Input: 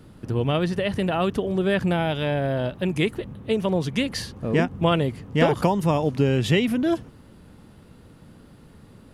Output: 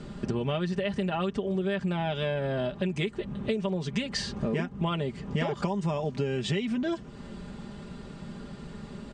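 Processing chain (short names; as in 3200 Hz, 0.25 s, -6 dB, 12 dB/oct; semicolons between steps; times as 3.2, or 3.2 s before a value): elliptic low-pass 8300 Hz, stop band 40 dB; comb 5 ms, depth 68%; compressor 6:1, threshold -34 dBFS, peak gain reduction 18.5 dB; gain +6.5 dB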